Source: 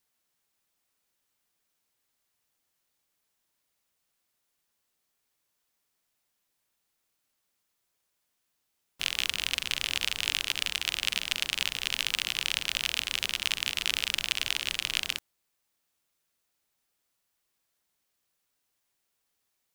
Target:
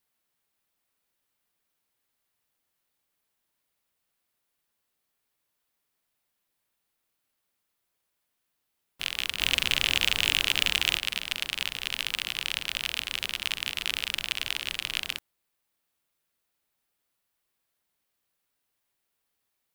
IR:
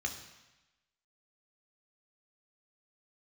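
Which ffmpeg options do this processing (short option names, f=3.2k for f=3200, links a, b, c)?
-filter_complex "[0:a]equalizer=f=6.4k:t=o:w=0.99:g=-5,asettb=1/sr,asplit=3[a][b][c];[a]atrim=end=9.404[d];[b]atrim=start=9.4:end=10.98,asetpts=PTS-STARTPTS,afade=t=in:d=0.004:c=qsin,afade=t=out:st=1.576:d=0.004:c=qsin,aeval=exprs='0.447*sin(PI/2*1.78*val(0)/0.447)':c=same[e];[c]atrim=start=10.976[f];[d][e]acrossfade=d=0.004:c1=hsin:c2=qsin[g];[g][f]acrossfade=d=0.004:c1=qsin:c2=hsin"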